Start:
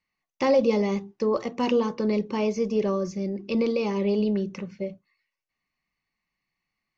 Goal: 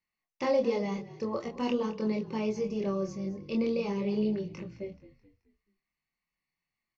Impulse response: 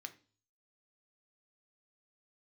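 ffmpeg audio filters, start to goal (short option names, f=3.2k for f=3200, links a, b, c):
-filter_complex "[0:a]flanger=delay=22.5:depth=4.3:speed=0.44,asplit=5[a][b][c][d][e];[b]adelay=215,afreqshift=-46,volume=-17dB[f];[c]adelay=430,afreqshift=-92,volume=-24.1dB[g];[d]adelay=645,afreqshift=-138,volume=-31.3dB[h];[e]adelay=860,afreqshift=-184,volume=-38.4dB[i];[a][f][g][h][i]amix=inputs=5:normalize=0,volume=-3.5dB"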